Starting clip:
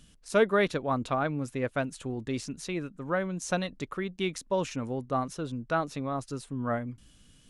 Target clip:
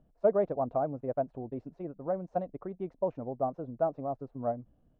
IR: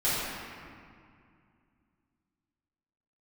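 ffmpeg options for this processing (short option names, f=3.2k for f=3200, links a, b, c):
-af "atempo=1.5,lowpass=f=690:t=q:w=3.6,volume=-7dB"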